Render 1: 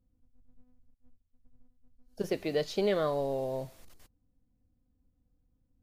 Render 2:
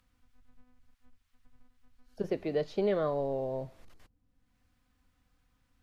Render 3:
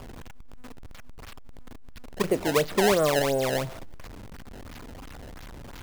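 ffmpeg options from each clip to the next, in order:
ffmpeg -i in.wav -filter_complex "[0:a]lowpass=frequency=1400:poles=1,acrossover=split=480|1100[link_01][link_02][link_03];[link_03]acompressor=mode=upward:threshold=-59dB:ratio=2.5[link_04];[link_01][link_02][link_04]amix=inputs=3:normalize=0" out.wav
ffmpeg -i in.wav -af "aeval=exprs='val(0)+0.5*0.00708*sgn(val(0))':channel_layout=same,acrusher=samples=22:mix=1:aa=0.000001:lfo=1:lforange=35.2:lforate=2.9,volume=7dB" out.wav

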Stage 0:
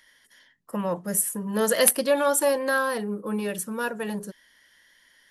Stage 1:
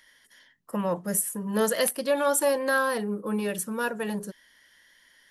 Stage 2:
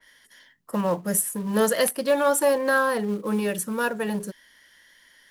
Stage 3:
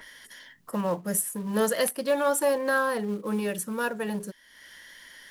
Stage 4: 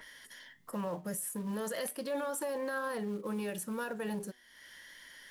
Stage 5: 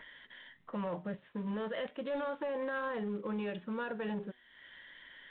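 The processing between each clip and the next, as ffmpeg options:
ffmpeg -i in.wav -af "alimiter=limit=-14dB:level=0:latency=1:release=349" out.wav
ffmpeg -i in.wav -filter_complex "[0:a]asplit=2[link_01][link_02];[link_02]acrusher=bits=3:mode=log:mix=0:aa=0.000001,volume=-6.5dB[link_03];[link_01][link_03]amix=inputs=2:normalize=0,adynamicequalizer=threshold=0.0178:dfrequency=2300:dqfactor=0.7:tfrequency=2300:tqfactor=0.7:attack=5:release=100:ratio=0.375:range=2.5:mode=cutabove:tftype=highshelf" out.wav
ffmpeg -i in.wav -af "acompressor=mode=upward:threshold=-34dB:ratio=2.5,volume=-3.5dB" out.wav
ffmpeg -i in.wav -af "alimiter=level_in=0.5dB:limit=-24dB:level=0:latency=1:release=24,volume=-0.5dB,flanger=delay=6.4:depth=2.3:regen=89:speed=1:shape=triangular" out.wav
ffmpeg -i in.wav -af "volume=31dB,asoftclip=hard,volume=-31dB" -ar 8000 -c:a adpcm_g726 -b:a 40k out.wav

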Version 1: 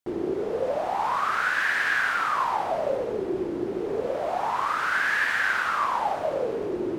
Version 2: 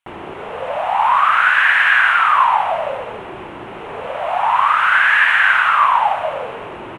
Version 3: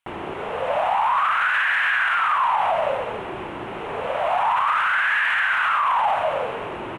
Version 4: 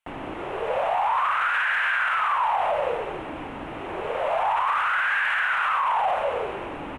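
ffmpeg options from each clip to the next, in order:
ffmpeg -i in.wav -af "firequalizer=gain_entry='entry(120,0);entry(360,-12);entry(640,3);entry(950,10);entry(1700,8);entry(2800,13);entry(4700,-10);entry(9700,2);entry(14000,-13)':delay=0.05:min_phase=1,volume=3dB" out.wav
ffmpeg -i in.wav -af "alimiter=limit=-13dB:level=0:latency=1:release=18" out.wav
ffmpeg -i in.wav -af "afreqshift=-66,volume=-3dB" out.wav

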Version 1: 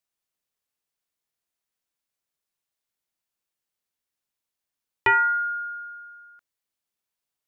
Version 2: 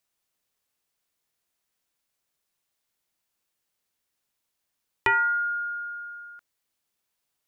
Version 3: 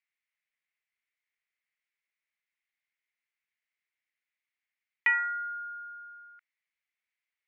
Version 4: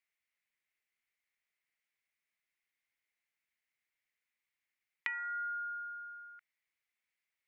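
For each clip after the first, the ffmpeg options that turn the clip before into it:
ffmpeg -i in.wav -af "acompressor=threshold=-43dB:ratio=1.5,volume=6dB" out.wav
ffmpeg -i in.wav -af "bandpass=frequency=2100:width_type=q:width=5.8:csg=0,volume=5dB" out.wav
ffmpeg -i in.wav -af "acompressor=threshold=-35dB:ratio=12" out.wav

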